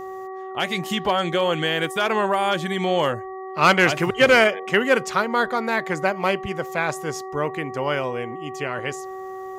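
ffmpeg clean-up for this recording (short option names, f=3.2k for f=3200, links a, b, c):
-af "bandreject=f=379.1:t=h:w=4,bandreject=f=758.2:t=h:w=4,bandreject=f=1.1373k:t=h:w=4,bandreject=f=1.9k:w=30"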